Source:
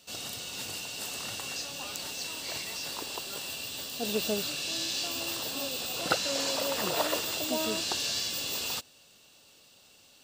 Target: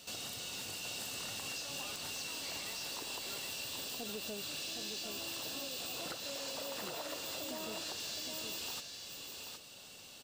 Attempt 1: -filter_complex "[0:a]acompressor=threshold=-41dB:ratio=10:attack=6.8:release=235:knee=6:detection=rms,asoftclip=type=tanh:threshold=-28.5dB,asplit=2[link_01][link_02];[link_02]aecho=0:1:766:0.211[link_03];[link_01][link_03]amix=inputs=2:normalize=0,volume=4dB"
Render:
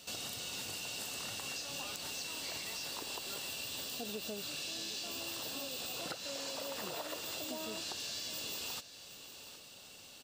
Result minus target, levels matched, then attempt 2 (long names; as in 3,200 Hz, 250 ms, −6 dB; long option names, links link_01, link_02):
soft clipping: distortion −16 dB; echo-to-direct −8 dB
-filter_complex "[0:a]acompressor=threshold=-41dB:ratio=10:attack=6.8:release=235:knee=6:detection=rms,asoftclip=type=tanh:threshold=-38.5dB,asplit=2[link_01][link_02];[link_02]aecho=0:1:766:0.531[link_03];[link_01][link_03]amix=inputs=2:normalize=0,volume=4dB"